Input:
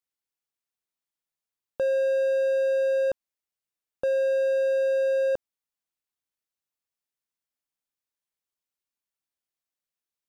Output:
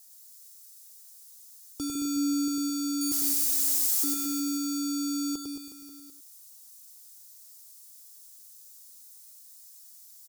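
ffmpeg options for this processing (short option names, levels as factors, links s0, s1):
-filter_complex "[0:a]asettb=1/sr,asplit=3[s0][s1][s2];[s0]atrim=end=3.014[s3];[s1]atrim=start=3.01:end=4.04,asetpts=PTS-STARTPTS,afade=t=in:d=0.004:c=qsin,afade=t=out:st=1.026:d=0.004:c=qsin,aeval=exprs='val(0)+0.5*0.0188*sgn(val(0))':c=same[s4];[s2]atrim=start=4.036[s5];[s3][s4]acrossfade=d=0.004:c1=hsin:c2=qsin[s6];[s6][s5]acrossfade=d=0.004:c1=qsin:c2=hsin,aexciter=amount=10:drive=9.8:freq=4300,acontrast=78,acrusher=bits=11:mix=0:aa=0.000001,alimiter=limit=0.0708:level=0:latency=1,asettb=1/sr,asplit=3[s7][s8][s9];[s7]atrim=end=1.954[s10];[s8]atrim=start=1.95:end=2.48,asetpts=PTS-STARTPTS,afade=t=in:d=0.004:c=qsin,afade=t=out:st=0.526:d=0.004:c=qsin,lowshelf=f=390:g=10.5[s11];[s9]atrim=start=2.476[s12];[s10][s11]acrossfade=d=0.004:c1=hsin:c2=qsin[s13];[s13][s12]acrossfade=d=0.004:c1=qsin:c2=hsin,asplit=2[s14][s15];[s15]aecho=0:1:103:0.282[s16];[s14][s16]amix=inputs=2:normalize=0,afreqshift=-250,aecho=1:1:2.4:0.46,asplit=2[s17][s18];[s18]aecho=0:1:100|220|364|536.8|744.2:0.631|0.398|0.251|0.158|0.1[s19];[s17][s19]amix=inputs=2:normalize=0"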